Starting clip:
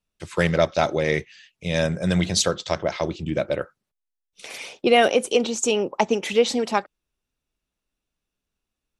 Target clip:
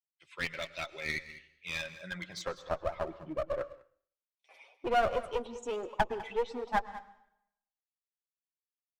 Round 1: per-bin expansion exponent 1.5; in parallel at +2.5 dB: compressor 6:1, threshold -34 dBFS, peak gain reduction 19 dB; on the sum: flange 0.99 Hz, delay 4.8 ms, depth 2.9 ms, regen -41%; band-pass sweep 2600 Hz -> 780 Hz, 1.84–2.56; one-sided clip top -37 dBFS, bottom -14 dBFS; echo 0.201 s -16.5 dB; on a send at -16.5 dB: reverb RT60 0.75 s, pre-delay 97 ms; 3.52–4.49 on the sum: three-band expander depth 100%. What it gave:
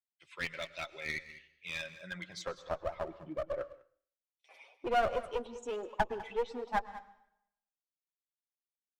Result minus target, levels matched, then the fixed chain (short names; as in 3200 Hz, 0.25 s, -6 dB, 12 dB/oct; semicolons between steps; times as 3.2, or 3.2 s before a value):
compressor: peak gain reduction +9 dB
per-bin expansion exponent 1.5; in parallel at +2.5 dB: compressor 6:1, threshold -23.5 dBFS, peak gain reduction 10.5 dB; on the sum: flange 0.99 Hz, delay 4.8 ms, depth 2.9 ms, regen -41%; band-pass sweep 2600 Hz -> 780 Hz, 1.84–2.56; one-sided clip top -37 dBFS, bottom -14 dBFS; echo 0.201 s -16.5 dB; on a send at -16.5 dB: reverb RT60 0.75 s, pre-delay 97 ms; 3.52–4.49 on the sum: three-band expander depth 100%